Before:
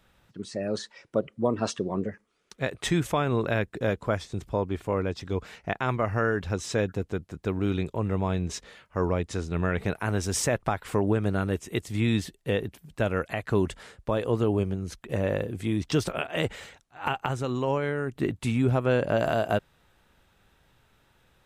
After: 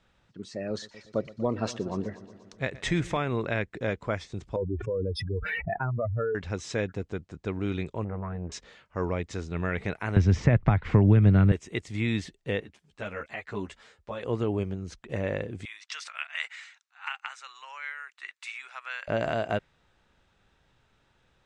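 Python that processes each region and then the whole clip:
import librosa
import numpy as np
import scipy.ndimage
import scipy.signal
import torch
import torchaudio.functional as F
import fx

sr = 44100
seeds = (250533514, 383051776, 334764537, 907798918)

y = fx.chain(x, sr, fx.low_shelf(hz=76.0, db=10.0),
    fx.echo_heads(ms=120, heads='first and second', feedback_pct=57, wet_db=-20), at=(0.7, 3.17))
y = fx.chain(y, sr, fx.spec_expand(power=3.2),
    fx.resample_bad(factor=3, down='none', up='hold'),
    fx.env_flatten(amount_pct=70), at=(4.56, 6.35))
y = fx.chain(y, sr, fx.lowpass(hz=1800.0, slope=24),
    fx.transformer_sat(knee_hz=390.0), at=(8.04, 8.52))
y = fx.chain(y, sr, fx.lowpass(hz=6500.0, slope=24),
    fx.bass_treble(bass_db=15, treble_db=-10),
    fx.band_squash(depth_pct=70), at=(10.16, 11.52))
y = fx.chain(y, sr, fx.low_shelf(hz=360.0, db=-8.0),
    fx.ensemble(), at=(12.6, 14.23))
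y = fx.chain(y, sr, fx.highpass(hz=1200.0, slope=24),
    fx.notch(hz=3200.0, q=18.0), at=(15.65, 19.08))
y = scipy.signal.sosfilt(scipy.signal.butter(4, 7600.0, 'lowpass', fs=sr, output='sos'), y)
y = fx.dynamic_eq(y, sr, hz=2100.0, q=3.0, threshold_db=-50.0, ratio=4.0, max_db=7)
y = F.gain(torch.from_numpy(y), -3.5).numpy()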